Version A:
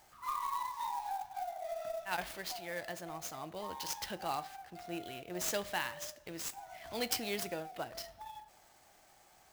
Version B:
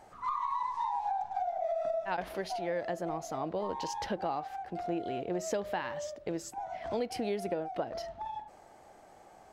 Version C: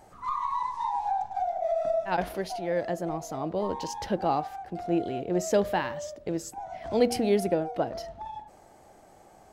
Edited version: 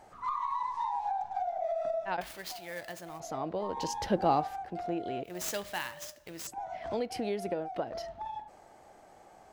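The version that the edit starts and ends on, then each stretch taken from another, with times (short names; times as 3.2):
B
2.21–3.2 from A
3.77–4.66 from C
5.24–6.47 from A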